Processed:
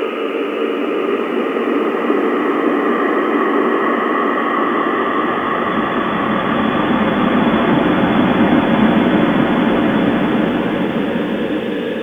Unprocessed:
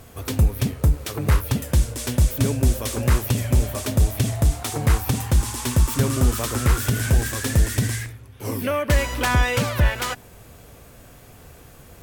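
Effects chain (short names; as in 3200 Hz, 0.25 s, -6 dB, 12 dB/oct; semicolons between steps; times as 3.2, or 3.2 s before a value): sine-wave speech; crackle 24/s -33 dBFS; Paulstretch 19×, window 0.50 s, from 1.09; gain +7 dB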